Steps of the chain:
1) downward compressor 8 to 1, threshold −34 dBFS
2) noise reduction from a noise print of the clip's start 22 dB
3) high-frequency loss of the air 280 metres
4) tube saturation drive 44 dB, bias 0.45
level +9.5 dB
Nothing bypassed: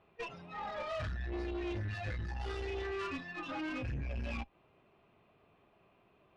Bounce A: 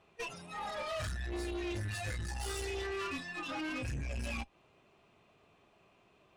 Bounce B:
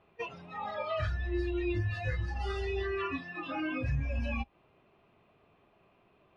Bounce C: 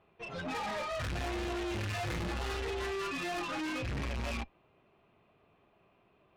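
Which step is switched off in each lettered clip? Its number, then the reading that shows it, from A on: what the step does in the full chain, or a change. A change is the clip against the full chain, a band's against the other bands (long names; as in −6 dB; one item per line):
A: 3, 4 kHz band +5.5 dB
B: 4, change in crest factor +5.0 dB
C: 1, average gain reduction 6.0 dB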